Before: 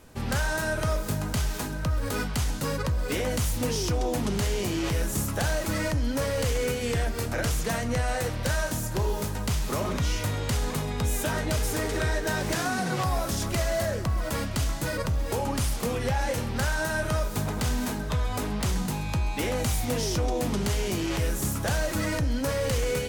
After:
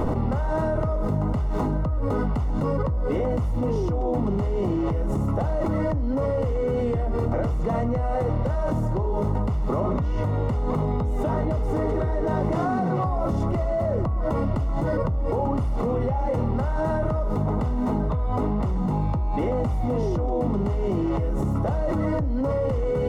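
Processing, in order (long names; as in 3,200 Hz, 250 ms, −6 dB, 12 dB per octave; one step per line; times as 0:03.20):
Savitzky-Golay smoothing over 65 samples
envelope flattener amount 100%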